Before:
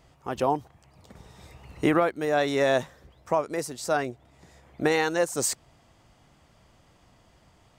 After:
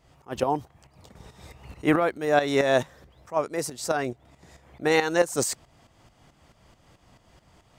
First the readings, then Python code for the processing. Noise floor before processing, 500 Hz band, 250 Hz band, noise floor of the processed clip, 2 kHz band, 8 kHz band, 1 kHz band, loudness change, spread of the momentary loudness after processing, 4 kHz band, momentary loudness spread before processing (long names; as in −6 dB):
−61 dBFS, +1.0 dB, +1.0 dB, −62 dBFS, +1.5 dB, 0.0 dB, +0.5 dB, +1.0 dB, 10 LU, +1.5 dB, 9 LU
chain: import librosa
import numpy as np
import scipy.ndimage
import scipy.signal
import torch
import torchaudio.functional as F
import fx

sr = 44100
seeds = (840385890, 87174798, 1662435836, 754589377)

y = fx.tremolo_shape(x, sr, shape='saw_up', hz=4.6, depth_pct=70)
y = fx.attack_slew(y, sr, db_per_s=370.0)
y = y * 10.0 ** (5.0 / 20.0)